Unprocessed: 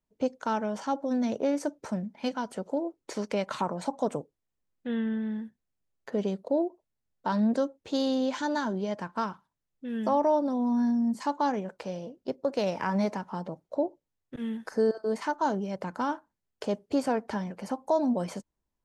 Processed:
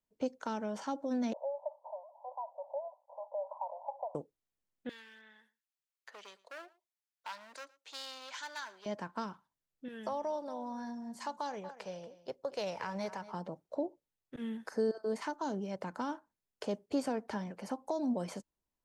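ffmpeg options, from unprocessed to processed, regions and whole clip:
-filter_complex "[0:a]asettb=1/sr,asplit=3[a][b][c];[a]atrim=end=1.334[d];[b]atrim=start=1.33:end=4.15,asetpts=PTS-STARTPTS,afade=t=in:d=0.004:c=qsin,afade=t=out:st=2.816:d=0.004:c=qsin,aeval=exprs='val(0)+0.5*0.0251*sgn(val(0))':c=same,agate=range=-33dB:threshold=-30dB:ratio=3:release=100:detection=peak,asuperpass=centerf=740:order=12:qfactor=1.7[e];[c]atrim=start=4.146[f];[d][e]acrossfade=d=0.004:c1=hsin:c2=qsin[g];[g][f]acrossfade=d=0.004:c1=qsin:c2=hsin,asettb=1/sr,asplit=3[h][i][j];[h]atrim=end=4.894[k];[i]atrim=start=4.89:end=8.86,asetpts=PTS-STARTPTS,afade=t=in:d=0.004:c=qsin,afade=t=out:st=3.966:d=0.004:c=qsin,asoftclip=type=hard:threshold=-25.5dB,highpass=1.4k,aecho=1:1:114:0.0794,atrim=end_sample=175077[l];[j]atrim=start=8.856[m];[k][l]acrossfade=d=0.004:c1=hsin:c2=qsin[n];[n][m]acrossfade=d=0.004:c1=qsin:c2=hsin,asettb=1/sr,asplit=3[o][p][q];[o]atrim=end=9.884[r];[p]atrim=start=9.88:end=13.34,asetpts=PTS-STARTPTS,afade=t=in:d=0.004:c=qsin,afade=t=out:st=3.456:d=0.004:c=qsin,equalizer=f=260:w=1.5:g=-13,aecho=1:1:234:0.133,atrim=end_sample=152586[s];[q]atrim=start=13.336[t];[r][s]acrossfade=d=0.004:c1=hsin:c2=qsin[u];[u][t]acrossfade=d=0.004:c1=qsin:c2=hsin,lowshelf=f=190:g=-5,acrossover=split=440|3000[v][w][x];[w]acompressor=threshold=-33dB:ratio=6[y];[v][y][x]amix=inputs=3:normalize=0,volume=-4dB"

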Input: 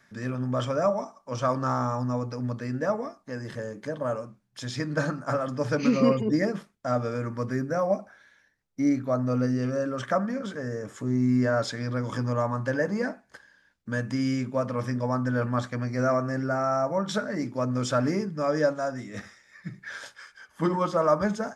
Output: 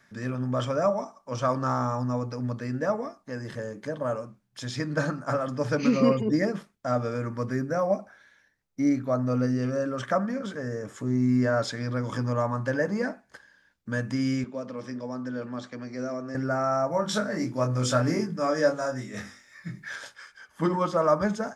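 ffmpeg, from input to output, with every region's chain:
-filter_complex "[0:a]asettb=1/sr,asplit=3[a][b][c];[a]atrim=end=14.444[d];[b]atrim=start=14.44:end=16.35,asetpts=PTS-STARTPTS,afade=t=in:d=0.004:c=qsin,afade=t=out:st=1.906:d=0.004:c=qsin,acrossover=split=440|3000[e][f][g];[f]acompressor=threshold=-50dB:ratio=2:attack=3.2:release=140:knee=2.83:detection=peak[h];[e][h][g]amix=inputs=3:normalize=0,highpass=280,lowpass=5.4k[i];[c]atrim=start=16.346[j];[d][i]acrossfade=d=0.004:c1=hsin:c2=qsin[k];[k][j]acrossfade=d=0.004:c1=qsin:c2=hsin,asettb=1/sr,asplit=3[l][m][n];[l]atrim=end=16.914[o];[m]atrim=start=16.91:end=19.96,asetpts=PTS-STARTPTS,afade=t=in:d=0.004:c=qsin,afade=t=out:st=3.046:d=0.004:c=qsin,highshelf=f=7.2k:g=7,bandreject=f=50:t=h:w=6,bandreject=f=100:t=h:w=6,bandreject=f=150:t=h:w=6,bandreject=f=200:t=h:w=6,bandreject=f=250:t=h:w=6,bandreject=f=300:t=h:w=6,bandreject=f=350:t=h:w=6,bandreject=f=400:t=h:w=6,bandreject=f=450:t=h:w=6,bandreject=f=500:t=h:w=6,asplit=2[p][q];[q]adelay=24,volume=-4dB[r];[p][r]amix=inputs=2:normalize=0,atrim=end_sample=134505[s];[n]atrim=start=19.956[t];[o][s]acrossfade=d=0.004:c1=hsin:c2=qsin[u];[u][t]acrossfade=d=0.004:c1=qsin:c2=hsin"

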